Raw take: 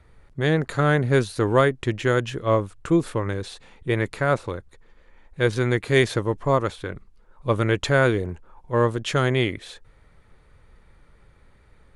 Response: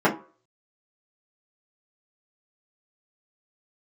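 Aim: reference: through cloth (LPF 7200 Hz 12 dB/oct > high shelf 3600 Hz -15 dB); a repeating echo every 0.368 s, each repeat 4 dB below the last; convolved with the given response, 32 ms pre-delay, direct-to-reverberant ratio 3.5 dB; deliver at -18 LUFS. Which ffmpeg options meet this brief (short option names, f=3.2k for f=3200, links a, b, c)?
-filter_complex "[0:a]aecho=1:1:368|736|1104|1472|1840|2208|2576|2944|3312:0.631|0.398|0.25|0.158|0.0994|0.0626|0.0394|0.0249|0.0157,asplit=2[a][b];[1:a]atrim=start_sample=2205,adelay=32[c];[b][c]afir=irnorm=-1:irlink=0,volume=-22.5dB[d];[a][d]amix=inputs=2:normalize=0,lowpass=7.2k,highshelf=f=3.6k:g=-15,volume=2dB"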